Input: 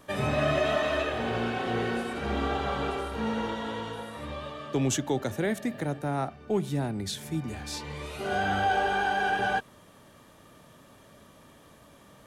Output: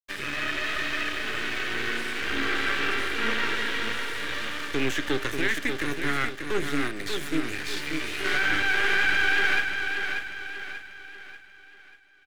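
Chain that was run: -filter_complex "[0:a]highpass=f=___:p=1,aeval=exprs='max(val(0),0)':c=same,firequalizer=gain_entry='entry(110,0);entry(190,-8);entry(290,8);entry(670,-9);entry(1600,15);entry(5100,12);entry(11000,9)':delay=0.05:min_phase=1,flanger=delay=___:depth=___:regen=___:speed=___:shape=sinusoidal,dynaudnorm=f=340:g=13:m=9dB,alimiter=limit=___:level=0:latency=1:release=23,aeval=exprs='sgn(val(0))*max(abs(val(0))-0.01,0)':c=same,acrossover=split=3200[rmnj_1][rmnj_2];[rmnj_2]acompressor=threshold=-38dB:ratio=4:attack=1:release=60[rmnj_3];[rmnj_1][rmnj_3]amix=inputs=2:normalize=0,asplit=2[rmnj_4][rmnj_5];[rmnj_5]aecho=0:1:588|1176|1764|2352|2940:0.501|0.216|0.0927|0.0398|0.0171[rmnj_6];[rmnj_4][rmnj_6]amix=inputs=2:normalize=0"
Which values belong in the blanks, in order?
160, 3.2, 6.7, 73, 0.87, -13.5dB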